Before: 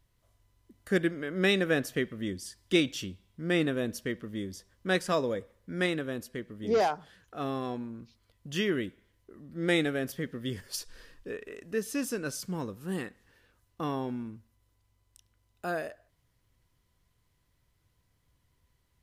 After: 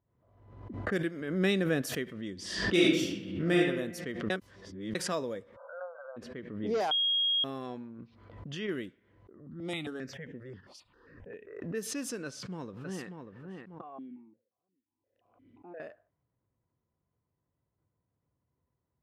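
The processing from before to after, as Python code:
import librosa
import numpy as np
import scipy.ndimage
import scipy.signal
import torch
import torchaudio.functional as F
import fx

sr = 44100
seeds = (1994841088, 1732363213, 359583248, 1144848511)

y = fx.low_shelf(x, sr, hz=260.0, db=10.0, at=(1.21, 1.82))
y = fx.reverb_throw(y, sr, start_s=2.44, length_s=1.13, rt60_s=1.0, drr_db=-6.5)
y = fx.brickwall_bandpass(y, sr, low_hz=500.0, high_hz=1600.0, at=(5.55, 6.16), fade=0.02)
y = fx.over_compress(y, sr, threshold_db=-37.0, ratio=-1.0, at=(7.98, 8.67), fade=0.02)
y = fx.phaser_held(y, sr, hz=7.5, low_hz=440.0, high_hz=4400.0, at=(9.37, 11.61), fade=0.02)
y = fx.echo_throw(y, sr, start_s=12.25, length_s=0.81, ms=590, feedback_pct=20, wet_db=-5.5)
y = fx.vowel_held(y, sr, hz=5.7, at=(13.81, 15.8))
y = fx.edit(y, sr, fx.reverse_span(start_s=4.3, length_s=0.65),
    fx.bleep(start_s=6.91, length_s=0.53, hz=3270.0, db=-19.5), tone=tone)
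y = scipy.signal.sosfilt(scipy.signal.butter(2, 110.0, 'highpass', fs=sr, output='sos'), y)
y = fx.env_lowpass(y, sr, base_hz=900.0, full_db=-27.0)
y = fx.pre_swell(y, sr, db_per_s=58.0)
y = F.gain(torch.from_numpy(y), -5.5).numpy()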